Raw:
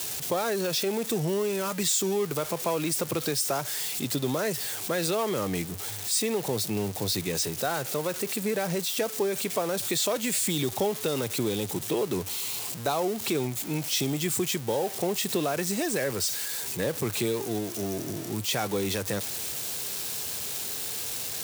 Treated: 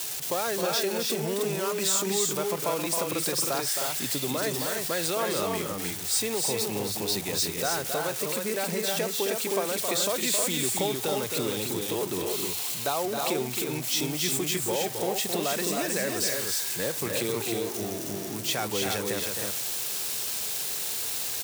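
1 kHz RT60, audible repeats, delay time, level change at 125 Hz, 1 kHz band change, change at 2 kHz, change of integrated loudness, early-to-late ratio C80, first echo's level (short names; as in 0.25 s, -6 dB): none, 2, 0.267 s, -3.5 dB, +1.0 dB, +2.0 dB, +1.0 dB, none, -6.5 dB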